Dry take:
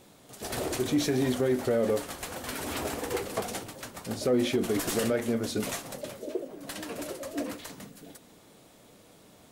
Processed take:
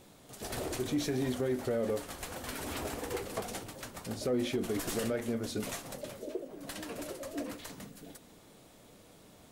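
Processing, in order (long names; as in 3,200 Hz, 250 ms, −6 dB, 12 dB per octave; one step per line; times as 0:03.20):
low-shelf EQ 60 Hz +9 dB
in parallel at −1 dB: downward compressor, threshold −39 dBFS, peak gain reduction 16.5 dB
on the sum: level −7.5 dB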